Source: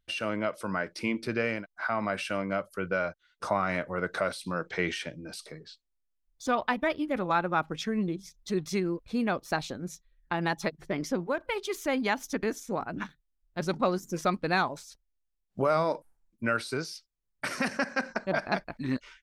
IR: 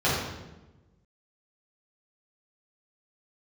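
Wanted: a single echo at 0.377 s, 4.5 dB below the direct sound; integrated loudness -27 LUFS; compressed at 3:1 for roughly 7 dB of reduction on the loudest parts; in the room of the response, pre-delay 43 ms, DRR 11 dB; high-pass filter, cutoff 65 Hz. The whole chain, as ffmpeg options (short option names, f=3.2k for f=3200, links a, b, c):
-filter_complex "[0:a]highpass=65,acompressor=threshold=-31dB:ratio=3,aecho=1:1:377:0.596,asplit=2[a][b];[1:a]atrim=start_sample=2205,adelay=43[c];[b][c]afir=irnorm=-1:irlink=0,volume=-27dB[d];[a][d]amix=inputs=2:normalize=0,volume=7.5dB"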